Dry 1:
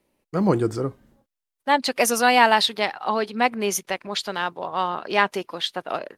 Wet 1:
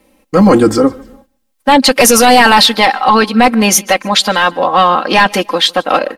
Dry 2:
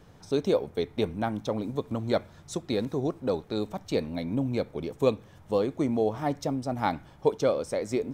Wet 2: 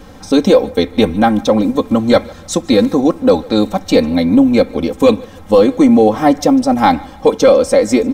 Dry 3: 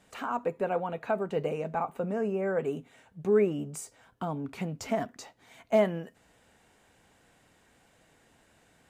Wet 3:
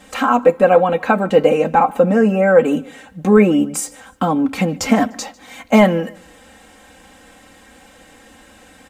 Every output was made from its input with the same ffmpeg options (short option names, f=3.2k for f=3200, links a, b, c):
-filter_complex "[0:a]aecho=1:1:3.8:0.86,apsyclip=17.5dB,asplit=2[a][b];[b]aecho=0:1:149|298:0.0631|0.0221[c];[a][c]amix=inputs=2:normalize=0,volume=-2dB"